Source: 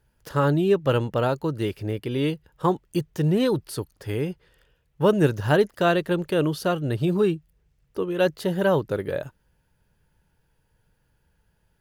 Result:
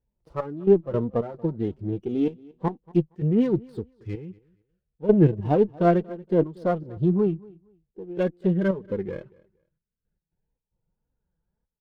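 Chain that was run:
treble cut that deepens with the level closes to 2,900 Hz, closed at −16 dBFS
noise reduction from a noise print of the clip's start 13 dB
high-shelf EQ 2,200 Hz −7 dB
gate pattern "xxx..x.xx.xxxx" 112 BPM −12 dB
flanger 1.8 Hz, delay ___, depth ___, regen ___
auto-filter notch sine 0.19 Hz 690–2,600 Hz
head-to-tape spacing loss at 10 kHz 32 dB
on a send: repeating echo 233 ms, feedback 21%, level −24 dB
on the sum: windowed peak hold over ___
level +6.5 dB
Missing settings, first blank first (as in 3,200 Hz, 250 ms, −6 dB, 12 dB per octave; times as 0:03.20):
3.7 ms, 2.6 ms, +33%, 5 samples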